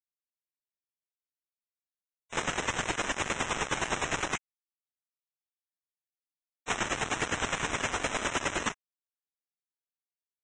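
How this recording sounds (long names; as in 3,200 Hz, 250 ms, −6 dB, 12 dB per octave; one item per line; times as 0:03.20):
aliases and images of a low sample rate 4,600 Hz, jitter 0%
chopped level 9.7 Hz, depth 60%, duty 25%
a quantiser's noise floor 6 bits, dither none
Ogg Vorbis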